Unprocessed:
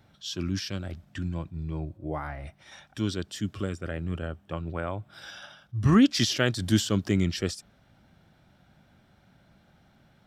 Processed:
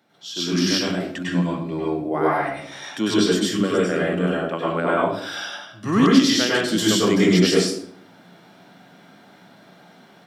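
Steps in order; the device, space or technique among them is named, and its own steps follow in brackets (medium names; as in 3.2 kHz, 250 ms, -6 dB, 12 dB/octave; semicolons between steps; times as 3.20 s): far laptop microphone (reverberation RT60 0.65 s, pre-delay 94 ms, DRR -6 dB; high-pass 200 Hz 24 dB/octave; level rider gain up to 9 dB); trim -1 dB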